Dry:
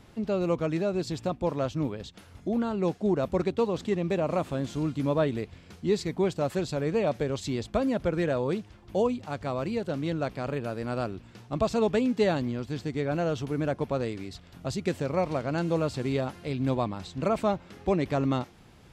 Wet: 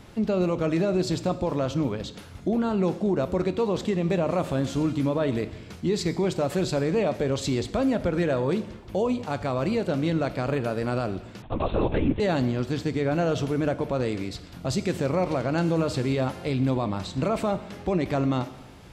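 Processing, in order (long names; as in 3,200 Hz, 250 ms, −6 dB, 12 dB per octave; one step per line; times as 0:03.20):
brickwall limiter −23 dBFS, peak gain reduction 9 dB
dense smooth reverb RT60 1 s, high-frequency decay 0.95×, DRR 11 dB
0:11.42–0:12.20: linear-prediction vocoder at 8 kHz whisper
level +6 dB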